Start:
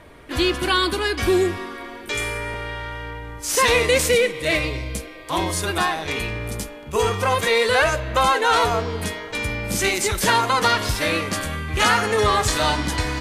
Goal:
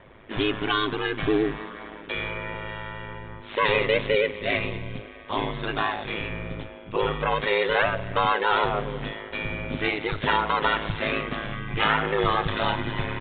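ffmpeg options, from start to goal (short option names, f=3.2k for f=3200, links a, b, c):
-af "aeval=exprs='val(0)*sin(2*PI*53*n/s)':c=same,aresample=8000,aresample=44100,volume=-1.5dB"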